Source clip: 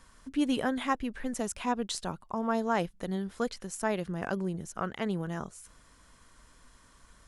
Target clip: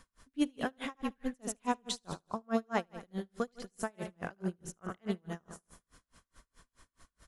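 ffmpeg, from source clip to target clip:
ffmpeg -i in.wav -filter_complex "[0:a]bandreject=frequency=910:width=20,asplit=2[link_01][link_02];[link_02]aecho=0:1:75|150|225|300|375|450|525:0.398|0.219|0.12|0.0662|0.0364|0.02|0.011[link_03];[link_01][link_03]amix=inputs=2:normalize=0,aeval=exprs='val(0)*pow(10,-38*(0.5-0.5*cos(2*PI*4.7*n/s))/20)':channel_layout=same" out.wav

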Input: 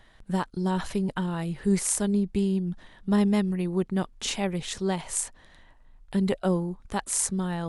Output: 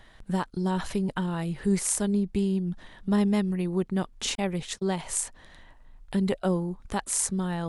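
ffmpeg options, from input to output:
ffmpeg -i in.wav -filter_complex "[0:a]asettb=1/sr,asplit=3[link_01][link_02][link_03];[link_01]atrim=end=4.354[link_04];[link_02]atrim=start=4.35:end=4.99,asetpts=PTS-STARTPTS,afade=type=in:duration=0.004:curve=qsin,afade=type=out:start_time=0.636:duration=0.004:curve=qsin,agate=range=-57dB:threshold=-33dB:ratio=16:detection=peak[link_05];[link_03]atrim=start=4.986[link_06];[link_04][link_05]acrossfade=duration=0.004:curve1=hsin:curve2=qsin[link_07];[link_07][link_06]acrossfade=duration=0.004:curve1=qsin:curve2=hsin,asplit=2[link_08][link_09];[link_09]acompressor=threshold=-35dB:ratio=6,volume=-1dB[link_10];[link_08][link_10]amix=inputs=2:normalize=0,volume=-2.5dB" out.wav

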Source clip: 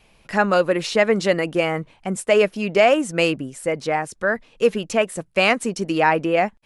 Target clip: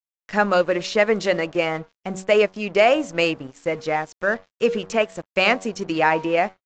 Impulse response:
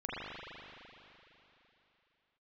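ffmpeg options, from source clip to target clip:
-af "adynamicequalizer=threshold=0.0158:dfrequency=190:dqfactor=1.1:tfrequency=190:tqfactor=1.1:attack=5:release=100:ratio=0.375:range=2:mode=cutabove:tftype=bell,bandreject=frequency=94.41:width_type=h:width=4,bandreject=frequency=188.82:width_type=h:width=4,bandreject=frequency=283.23:width_type=h:width=4,bandreject=frequency=377.64:width_type=h:width=4,bandreject=frequency=472.05:width_type=h:width=4,bandreject=frequency=566.46:width_type=h:width=4,bandreject=frequency=660.87:width_type=h:width=4,bandreject=frequency=755.28:width_type=h:width=4,bandreject=frequency=849.69:width_type=h:width=4,bandreject=frequency=944.1:width_type=h:width=4,bandreject=frequency=1038.51:width_type=h:width=4,bandreject=frequency=1132.92:width_type=h:width=4,aeval=exprs='sgn(val(0))*max(abs(val(0))-0.00891,0)':channel_layout=same" -ar 16000 -c:a aac -b:a 64k

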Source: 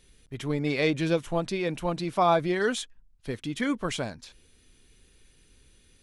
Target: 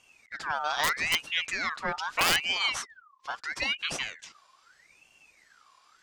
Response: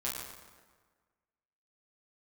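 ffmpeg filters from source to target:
-af "lowpass=frequency=5400:width_type=q:width=1.7,aeval=exprs='(mod(5.01*val(0)+1,2)-1)/5.01':channel_layout=same,aeval=exprs='val(0)*sin(2*PI*1900*n/s+1900*0.45/0.78*sin(2*PI*0.78*n/s))':channel_layout=same"

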